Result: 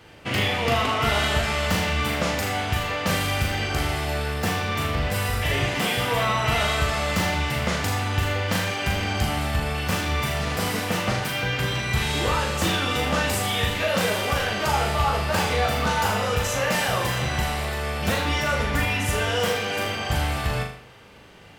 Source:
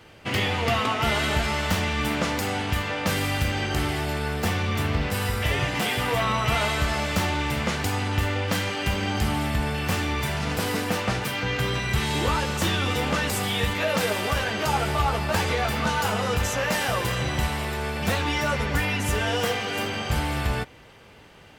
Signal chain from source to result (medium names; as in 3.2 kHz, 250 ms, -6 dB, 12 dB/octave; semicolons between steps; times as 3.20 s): flutter echo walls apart 6.7 m, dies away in 0.51 s